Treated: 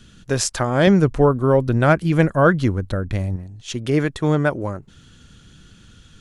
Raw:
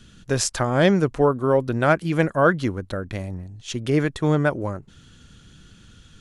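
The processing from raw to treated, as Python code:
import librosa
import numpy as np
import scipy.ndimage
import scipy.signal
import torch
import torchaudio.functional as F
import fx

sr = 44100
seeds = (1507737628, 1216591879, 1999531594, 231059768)

y = fx.low_shelf(x, sr, hz=140.0, db=11.0, at=(0.87, 3.36))
y = y * 10.0 ** (1.5 / 20.0)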